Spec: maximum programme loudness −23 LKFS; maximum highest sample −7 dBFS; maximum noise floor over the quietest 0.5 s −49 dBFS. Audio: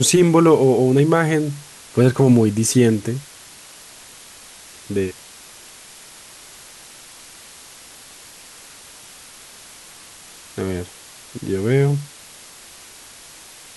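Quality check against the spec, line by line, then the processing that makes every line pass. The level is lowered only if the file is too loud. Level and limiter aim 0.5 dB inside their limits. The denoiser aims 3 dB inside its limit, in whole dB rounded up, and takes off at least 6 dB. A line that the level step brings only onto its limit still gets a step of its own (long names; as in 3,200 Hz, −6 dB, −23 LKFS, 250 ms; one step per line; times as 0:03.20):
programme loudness −17.5 LKFS: out of spec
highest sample −3.5 dBFS: out of spec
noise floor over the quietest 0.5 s −42 dBFS: out of spec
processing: broadband denoise 6 dB, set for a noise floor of −42 dBFS
level −6 dB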